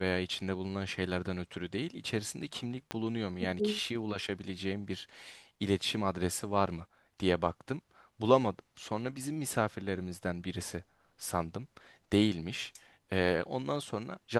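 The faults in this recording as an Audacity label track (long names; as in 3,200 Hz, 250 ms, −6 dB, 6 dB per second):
2.910000	2.910000	click −19 dBFS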